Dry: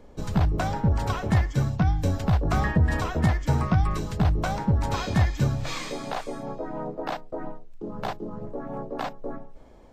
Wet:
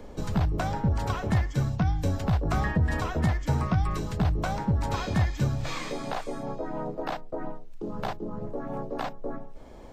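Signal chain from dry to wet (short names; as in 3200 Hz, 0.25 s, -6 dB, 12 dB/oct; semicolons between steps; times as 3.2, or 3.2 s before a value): three-band squash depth 40%; gain -2.5 dB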